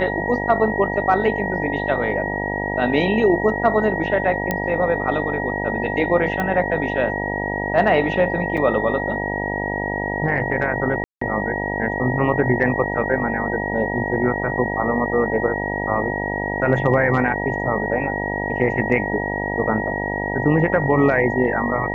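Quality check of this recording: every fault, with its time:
buzz 50 Hz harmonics 19 -26 dBFS
whine 1.9 kHz -26 dBFS
4.51 s: pop -7 dBFS
6.40 s: pop -11 dBFS
8.57–8.58 s: dropout 5.7 ms
11.04–11.21 s: dropout 174 ms

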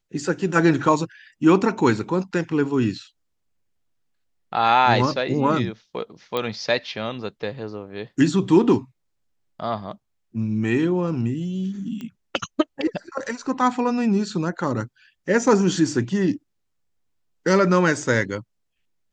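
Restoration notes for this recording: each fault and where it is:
6.37 s: pop -12 dBFS
12.01 s: pop -22 dBFS

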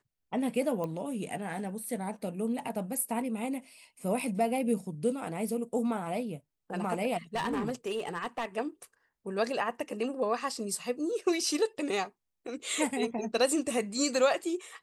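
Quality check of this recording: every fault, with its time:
0.84 s: pop -23 dBFS
7.35–8.45 s: clipped -27.5 dBFS

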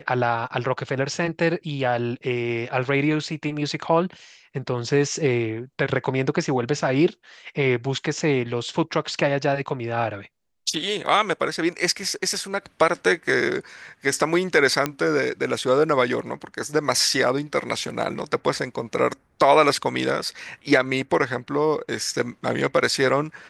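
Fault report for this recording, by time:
14.86 s: pop -8 dBFS

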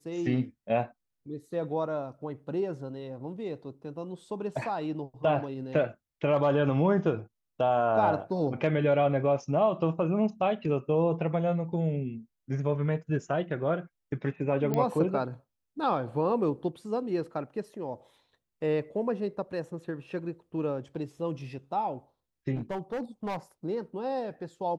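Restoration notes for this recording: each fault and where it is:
14.74 s: pop -16 dBFS
22.55–23.37 s: clipped -29 dBFS

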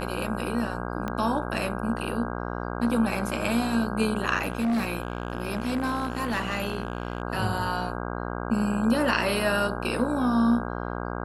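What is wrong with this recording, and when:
buzz 60 Hz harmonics 27 -32 dBFS
1.08 s: pop -17 dBFS
4.41–7.22 s: clipped -22 dBFS

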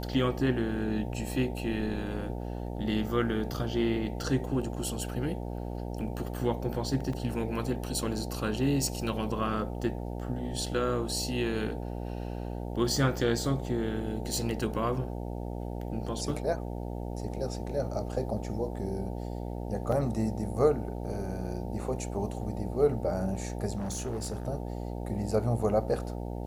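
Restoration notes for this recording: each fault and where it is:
buzz 60 Hz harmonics 15 -36 dBFS
7.13 s: dropout 3.6 ms
19.92 s: dropout 3.8 ms
23.77–24.48 s: clipped -30 dBFS

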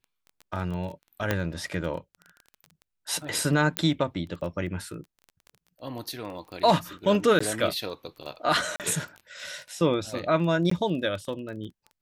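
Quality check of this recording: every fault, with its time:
crackle 18 per s -35 dBFS
1.31 s: pop -10 dBFS
3.77 s: pop -8 dBFS
7.39–7.41 s: dropout 15 ms
8.76–8.80 s: dropout 38 ms
10.70–10.71 s: dropout 14 ms

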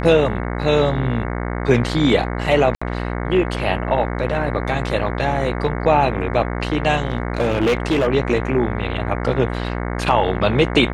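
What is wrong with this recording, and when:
buzz 60 Hz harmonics 37 -24 dBFS
2.75–2.81 s: dropout 65 ms
7.05–8.08 s: clipped -13 dBFS

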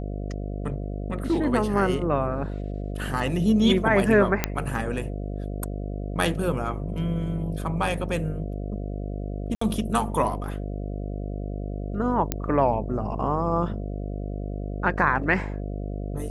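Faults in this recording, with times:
buzz 50 Hz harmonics 14 -31 dBFS
4.44 s: pop -5 dBFS
9.55–9.61 s: dropout 64 ms
12.32 s: pop -8 dBFS

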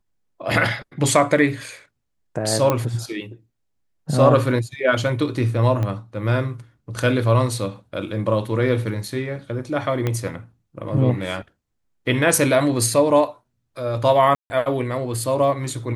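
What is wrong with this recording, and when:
2.70 s: pop -6 dBFS
5.83 s: pop -14 dBFS
10.07 s: pop -10 dBFS
14.35–14.50 s: dropout 150 ms

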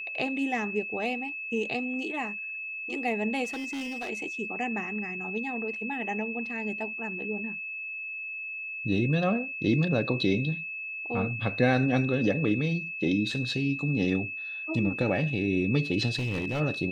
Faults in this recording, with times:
whine 2.6 kHz -34 dBFS
3.44–4.10 s: clipped -31.5 dBFS
16.15–16.61 s: clipped -25.5 dBFS

